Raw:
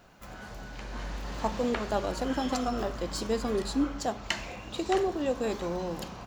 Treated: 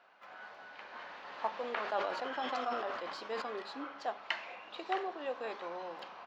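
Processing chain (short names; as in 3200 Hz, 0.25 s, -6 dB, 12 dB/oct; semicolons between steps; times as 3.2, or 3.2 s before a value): HPF 780 Hz 12 dB/oct; air absorption 310 m; 1.65–3.42 sustainer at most 39 dB/s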